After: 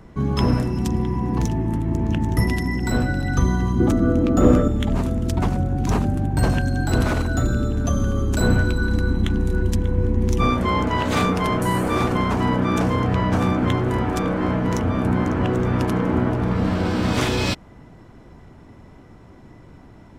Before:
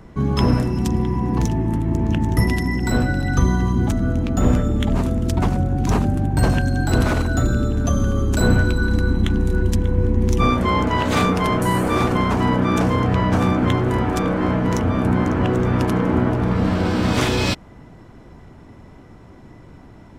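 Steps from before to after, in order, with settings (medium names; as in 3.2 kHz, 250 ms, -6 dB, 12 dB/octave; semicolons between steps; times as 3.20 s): 3.80–4.68 s: small resonant body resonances 330/500/1200 Hz, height 11 dB, ringing for 25 ms; trim -2 dB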